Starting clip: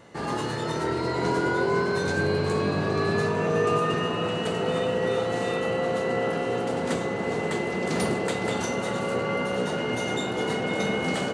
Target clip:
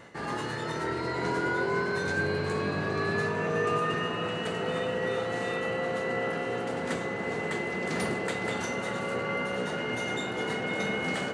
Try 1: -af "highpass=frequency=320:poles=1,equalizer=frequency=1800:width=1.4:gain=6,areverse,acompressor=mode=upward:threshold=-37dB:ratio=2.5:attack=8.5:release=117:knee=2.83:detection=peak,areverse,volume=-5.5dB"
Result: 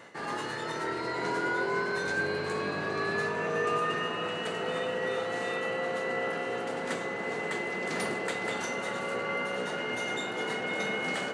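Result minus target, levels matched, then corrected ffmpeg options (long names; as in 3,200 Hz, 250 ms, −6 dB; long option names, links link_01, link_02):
250 Hz band −3.0 dB
-af "equalizer=frequency=1800:width=1.4:gain=6,areverse,acompressor=mode=upward:threshold=-37dB:ratio=2.5:attack=8.5:release=117:knee=2.83:detection=peak,areverse,volume=-5.5dB"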